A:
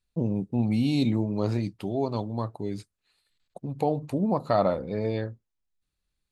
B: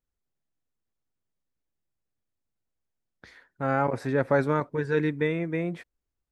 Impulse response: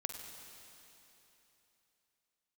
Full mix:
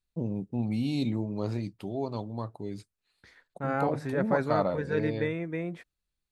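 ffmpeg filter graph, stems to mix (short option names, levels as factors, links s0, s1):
-filter_complex "[0:a]volume=0.562[s0];[1:a]agate=range=0.224:threshold=0.00224:ratio=16:detection=peak,volume=0.596[s1];[s0][s1]amix=inputs=2:normalize=0"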